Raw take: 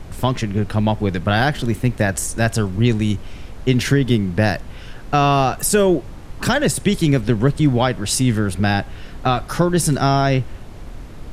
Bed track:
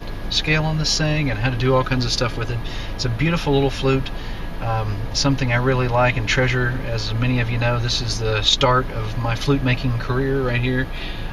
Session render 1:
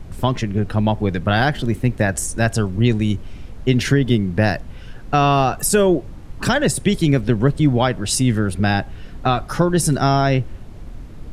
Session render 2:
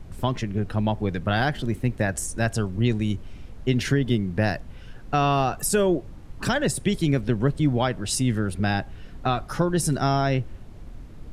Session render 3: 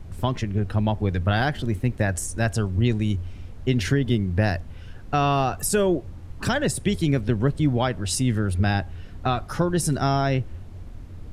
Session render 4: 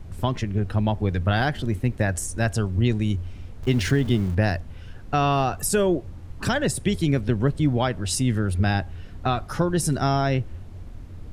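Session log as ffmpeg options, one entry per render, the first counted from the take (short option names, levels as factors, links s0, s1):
-af "afftdn=nr=6:nf=-35"
-af "volume=0.501"
-af "equalizer=f=88:t=o:w=0.24:g=13.5"
-filter_complex "[0:a]asettb=1/sr,asplit=3[s0][s1][s2];[s0]atrim=end=3.624[s3];[s1]atrim=start=3.62:end=4.35,asetpts=PTS-STARTPTS,afade=t=in:d=0.004:c=qsin,afade=t=out:st=0.726:d=0.004:c=qsin,aeval=exprs='val(0)+0.5*0.0188*sgn(val(0))':c=same[s4];[s2]atrim=start=4.346[s5];[s3][s4]acrossfade=d=0.004:c1=hsin:c2=qsin[s6];[s6][s5]acrossfade=d=0.004:c1=qsin:c2=hsin"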